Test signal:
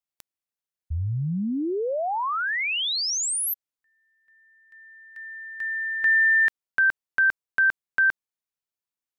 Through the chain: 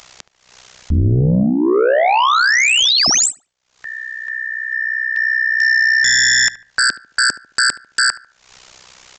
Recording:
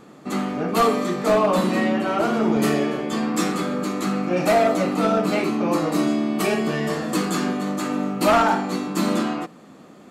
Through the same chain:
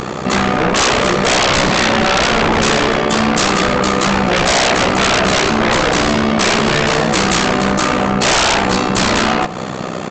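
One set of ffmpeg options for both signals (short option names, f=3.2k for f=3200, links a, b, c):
-filter_complex "[0:a]equalizer=f=270:t=o:w=0.57:g=-11,acompressor=mode=upward:threshold=-29dB:ratio=2.5:attack=0.35:release=207:knee=2.83:detection=peak,tremolo=f=63:d=0.889,aresample=16000,aeval=exprs='0.335*sin(PI/2*8.91*val(0)/0.335)':c=same,aresample=44100,asplit=2[a][b];[b]adelay=73,lowpass=f=2.1k:p=1,volume=-16dB,asplit=2[c][d];[d]adelay=73,lowpass=f=2.1k:p=1,volume=0.4,asplit=2[e][f];[f]adelay=73,lowpass=f=2.1k:p=1,volume=0.4,asplit=2[g][h];[h]adelay=73,lowpass=f=2.1k:p=1,volume=0.4[i];[a][c][e][g][i]amix=inputs=5:normalize=0"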